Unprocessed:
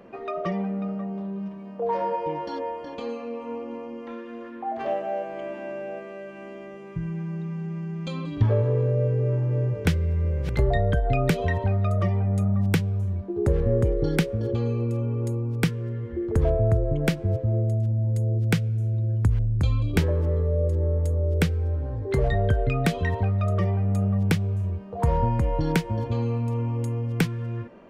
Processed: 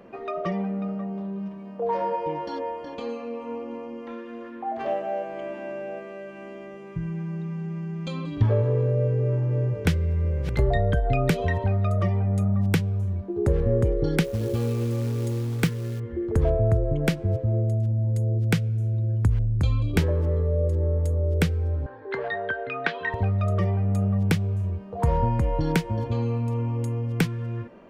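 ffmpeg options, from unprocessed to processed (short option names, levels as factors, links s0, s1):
-filter_complex "[0:a]asettb=1/sr,asplit=3[s0][s1][s2];[s0]atrim=end=14.244[s3];[s1]atrim=start=14.24:end=16,asetpts=PTS-STARTPTS,afade=t=in:d=0.004:c=qsin,afade=t=out:st=1.756:d=0.004:c=qsin,acrusher=bits=5:mode=log:mix=0:aa=0.000001[s4];[s2]atrim=start=15.996[s5];[s3][s4]acrossfade=d=0.004:c1=hsin:c2=qsin[s6];[s6][s5]acrossfade=d=0.004:c1=qsin:c2=hsin,asettb=1/sr,asplit=3[s7][s8][s9];[s7]atrim=end=21.864[s10];[s8]atrim=start=21.86:end=23.14,asetpts=PTS-STARTPTS,afade=t=in:d=0.004:c=qsin,afade=t=out:st=1.276:d=0.004:c=qsin,highpass=450,equalizer=f=580:t=q:w=4:g=-4,equalizer=f=950:t=q:w=4:g=5,equalizer=f=1600:t=q:w=4:g=10,lowpass=f=4100:w=0.5412,lowpass=f=4100:w=1.3066[s11];[s9]atrim=start=23.136[s12];[s10][s11]acrossfade=d=0.004:c1=hsin:c2=qsin[s13];[s13][s12]acrossfade=d=0.004:c1=qsin:c2=hsin"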